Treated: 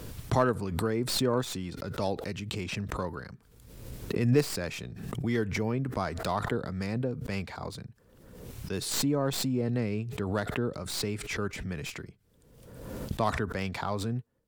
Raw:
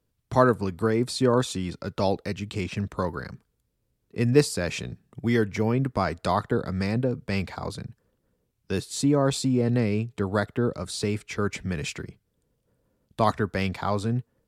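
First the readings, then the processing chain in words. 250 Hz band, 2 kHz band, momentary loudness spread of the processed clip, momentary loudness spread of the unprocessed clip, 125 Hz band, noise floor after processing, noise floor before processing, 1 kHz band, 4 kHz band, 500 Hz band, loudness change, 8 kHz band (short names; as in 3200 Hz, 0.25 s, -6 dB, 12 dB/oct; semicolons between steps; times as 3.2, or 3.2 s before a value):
-5.5 dB, -4.0 dB, 16 LU, 12 LU, -4.5 dB, -62 dBFS, -75 dBFS, -5.5 dB, -1.0 dB, -6.0 dB, -5.0 dB, -1.5 dB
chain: tracing distortion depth 0.053 ms; backwards sustainer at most 45 dB/s; gain -6.5 dB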